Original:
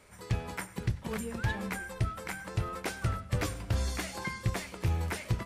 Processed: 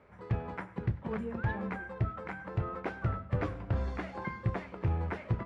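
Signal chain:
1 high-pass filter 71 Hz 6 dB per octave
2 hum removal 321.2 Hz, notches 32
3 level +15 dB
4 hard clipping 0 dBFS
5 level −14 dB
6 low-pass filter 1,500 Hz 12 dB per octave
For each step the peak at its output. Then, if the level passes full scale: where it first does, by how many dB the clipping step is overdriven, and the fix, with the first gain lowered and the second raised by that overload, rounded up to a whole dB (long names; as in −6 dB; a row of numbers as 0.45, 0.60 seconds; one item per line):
−19.5, −19.5, −4.5, −4.5, −18.5, −19.0 dBFS
no step passes full scale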